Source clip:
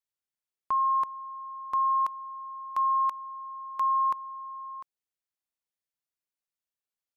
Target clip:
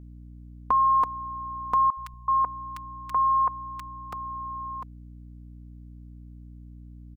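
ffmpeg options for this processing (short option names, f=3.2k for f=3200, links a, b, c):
-filter_complex "[0:a]tiltshelf=f=1.1k:g=5.5,aecho=1:1:4.1:0.74,aeval=exprs='val(0)+0.00316*(sin(2*PI*60*n/s)+sin(2*PI*2*60*n/s)/2+sin(2*PI*3*60*n/s)/3+sin(2*PI*4*60*n/s)/4+sin(2*PI*5*60*n/s)/5)':c=same,asettb=1/sr,asplit=3[a][b][c];[a]atrim=end=1.904[d];[b]atrim=start=1.9:end=4.13,asetpts=PTS-STARTPTS,afade=t=in:d=0.004:c=qsin,afade=t=out:st=2.226:d=0.004:c=qsin,acrossover=split=170|1700[e][f][g];[e]adelay=70[h];[f]adelay=380[i];[h][i][g]amix=inputs=3:normalize=0,atrim=end_sample=98343[j];[c]atrim=start=4.126[k];[d][j]acrossfade=d=0.004:c1=hsin:c2=qsin[l];[l][k]acrossfade=d=0.004:c1=qsin:c2=hsin,volume=7dB"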